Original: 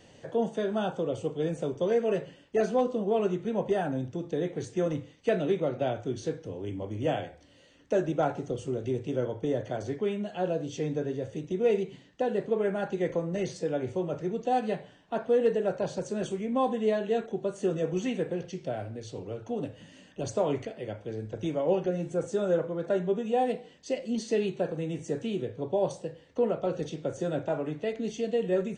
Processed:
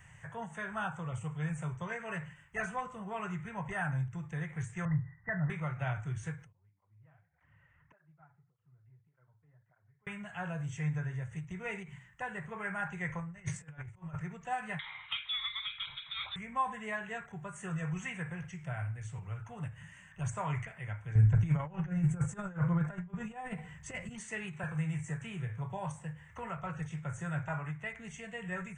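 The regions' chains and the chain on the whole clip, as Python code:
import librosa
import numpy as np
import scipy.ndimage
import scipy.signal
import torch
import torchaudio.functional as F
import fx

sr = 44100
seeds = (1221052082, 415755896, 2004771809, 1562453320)

y = fx.chain(x, sr, fx.cheby_ripple(hz=2000.0, ripple_db=6),
    fx.peak_eq(hz=120.0, db=8.0, octaves=1.6),
    fx.comb(ms=1.1, depth=0.56), at=(4.85, 5.5))
y = fx.chain(y, sr, fx.lowpass(hz=1600.0, slope=12),
    fx.gate_flip(shuts_db=-33.0, range_db=-27),
    fx.flanger_cancel(hz=1.7, depth_ms=5.7), at=(6.52, 10.07))
y = fx.chain(y, sr, fx.low_shelf(hz=180.0, db=3.5),
    fx.over_compress(threshold_db=-36.0, ratio=-0.5), at=(13.2, 14.2))
y = fx.chain(y, sr, fx.freq_invert(carrier_hz=3900),
    fx.peak_eq(hz=210.0, db=-7.5, octaves=0.37),
    fx.band_squash(depth_pct=70), at=(14.79, 16.36))
y = fx.chain(y, sr, fx.low_shelf(hz=440.0, db=11.0),
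    fx.over_compress(threshold_db=-25.0, ratio=-0.5), at=(21.15, 24.09))
y = fx.chain(y, sr, fx.doubler(ms=26.0, db=-12.5),
    fx.band_squash(depth_pct=40), at=(24.63, 26.57))
y = fx.curve_eq(y, sr, hz=(150.0, 260.0, 540.0, 1000.0, 2100.0, 4400.0, 7700.0), db=(0, -28, -24, -2, 2, -26, -1))
y = fx.end_taper(y, sr, db_per_s=170.0)
y = y * 10.0 ** (4.5 / 20.0)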